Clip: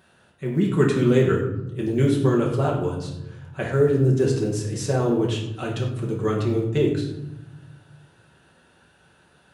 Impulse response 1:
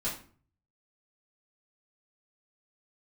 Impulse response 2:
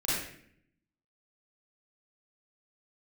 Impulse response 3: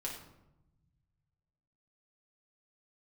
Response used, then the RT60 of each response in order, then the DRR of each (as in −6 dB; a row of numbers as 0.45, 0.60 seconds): 3; 0.45, 0.65, 0.90 seconds; −10.0, −10.0, −3.0 decibels